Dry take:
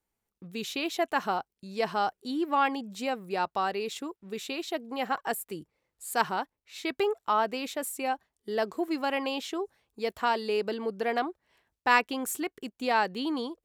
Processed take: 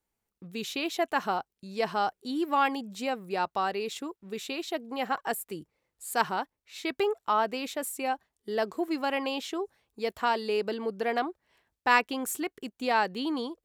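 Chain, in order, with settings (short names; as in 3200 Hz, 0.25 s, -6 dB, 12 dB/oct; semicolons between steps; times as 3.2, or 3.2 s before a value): 2.35–2.86 high shelf 4600 Hz -> 9100 Hz +8 dB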